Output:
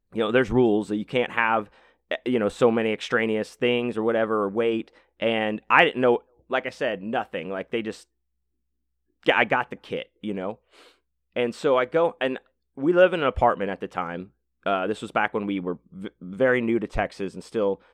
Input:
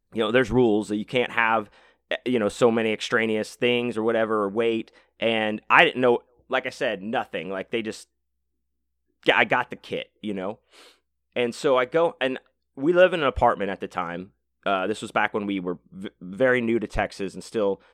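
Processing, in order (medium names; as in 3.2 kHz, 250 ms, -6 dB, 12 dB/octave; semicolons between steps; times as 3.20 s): treble shelf 3.7 kHz -7 dB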